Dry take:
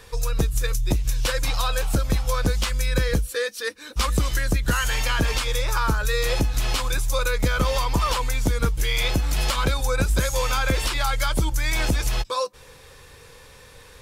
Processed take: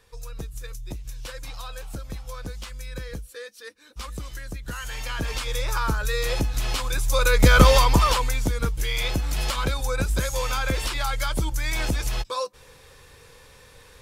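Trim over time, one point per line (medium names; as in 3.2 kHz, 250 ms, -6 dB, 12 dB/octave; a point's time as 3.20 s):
4.59 s -13 dB
5.63 s -2.5 dB
6.90 s -2.5 dB
7.59 s +9 dB
8.52 s -3 dB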